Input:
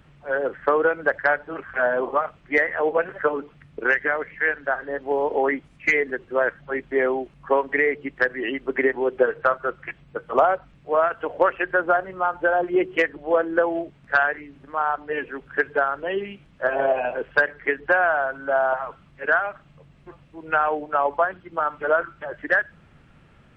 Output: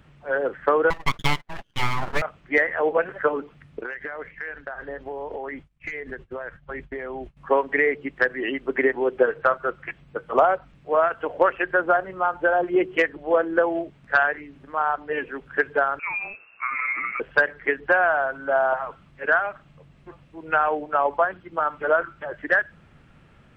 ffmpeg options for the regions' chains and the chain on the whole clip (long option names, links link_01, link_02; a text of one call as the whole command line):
ffmpeg -i in.wav -filter_complex "[0:a]asettb=1/sr,asplit=3[link_01][link_02][link_03];[link_01]atrim=end=0.904[link_04];[link_02]atrim=start=0.9:end=2.22,asetpts=PTS-STARTPTS,afade=type=in:duration=0.004:curve=qsin,afade=type=out:start_time=1.316:duration=0.004:curve=qsin,aeval=exprs='abs(val(0))':channel_layout=same,agate=range=-27dB:threshold=-36dB:ratio=16:release=100:detection=peak[link_05];[link_03]atrim=start=2.216[link_06];[link_04][link_05]acrossfade=duration=0.004:curve1=hsin:curve2=qsin[link_07];[link_07][link_06]acrossfade=duration=0.004:curve1=qsin:curve2=hsin,asettb=1/sr,asplit=3[link_08][link_09][link_10];[link_08]atrim=end=3.814[link_11];[link_09]atrim=start=3.81:end=7.37,asetpts=PTS-STARTPTS,afade=type=in:duration=0.004:curve=qsin,afade=type=out:start_time=3.556:duration=0.004:curve=qsin,agate=range=-33dB:threshold=-40dB:ratio=3:release=100:detection=peak,asubboost=boost=6.5:cutoff=130,acompressor=threshold=-28dB:ratio=16:attack=3.2:release=140:knee=1:detection=peak[link_12];[link_10]atrim=start=7.366[link_13];[link_11][link_12]acrossfade=duration=0.004:curve1=hsin:curve2=qsin[link_14];[link_14][link_13]acrossfade=duration=0.004:curve1=qsin:curve2=hsin,asettb=1/sr,asplit=3[link_15][link_16][link_17];[link_15]atrim=end=15.994[link_18];[link_16]atrim=start=15.99:end=17.2,asetpts=PTS-STARTPTS,afade=type=in:duration=0.004:curve=qsin,afade=type=out:start_time=1.206:duration=0.004:curve=qsin,equalizer=frequency=1500:width=2.9:gain=8,acompressor=threshold=-26dB:ratio=2.5:attack=3.2:release=140:knee=1:detection=peak,lowpass=frequency=2400:width_type=q:width=0.5098,lowpass=frequency=2400:width_type=q:width=0.6013,lowpass=frequency=2400:width_type=q:width=0.9,lowpass=frequency=2400:width_type=q:width=2.563,afreqshift=-2800[link_19];[link_17]atrim=start=17.196[link_20];[link_18][link_19]acrossfade=duration=0.004:curve1=hsin:curve2=qsin[link_21];[link_21][link_20]acrossfade=duration=0.004:curve1=qsin:curve2=hsin" out.wav